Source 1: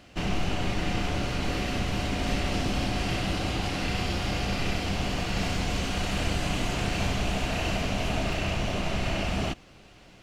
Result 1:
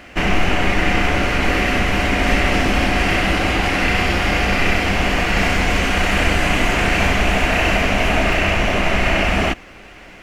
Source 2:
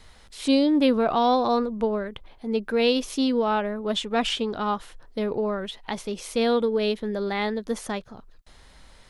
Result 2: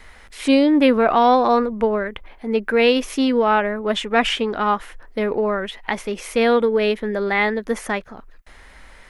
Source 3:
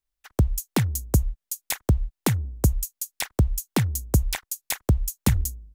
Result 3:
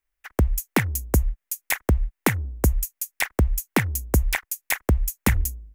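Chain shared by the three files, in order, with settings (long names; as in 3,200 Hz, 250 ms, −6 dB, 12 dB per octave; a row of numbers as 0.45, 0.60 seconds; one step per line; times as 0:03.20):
octave-band graphic EQ 125/2,000/4,000/8,000 Hz −9/+8/−7/−3 dB
normalise the peak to −3 dBFS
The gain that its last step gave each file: +12.0, +6.0, +3.5 decibels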